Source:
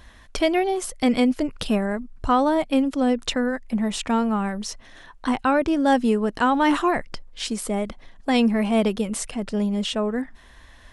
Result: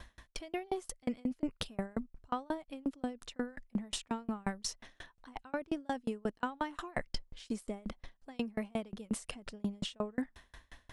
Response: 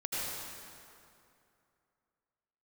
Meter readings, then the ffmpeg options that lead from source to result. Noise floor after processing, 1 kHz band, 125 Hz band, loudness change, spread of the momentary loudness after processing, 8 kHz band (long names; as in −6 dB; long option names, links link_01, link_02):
−74 dBFS, −18.0 dB, −13.0 dB, −17.0 dB, 10 LU, −12.5 dB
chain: -af "areverse,acompressor=threshold=-28dB:ratio=10,areverse,aeval=exprs='val(0)*pow(10,-35*if(lt(mod(5.6*n/s,1),2*abs(5.6)/1000),1-mod(5.6*n/s,1)/(2*abs(5.6)/1000),(mod(5.6*n/s,1)-2*abs(5.6)/1000)/(1-2*abs(5.6)/1000))/20)':channel_layout=same,volume=1.5dB"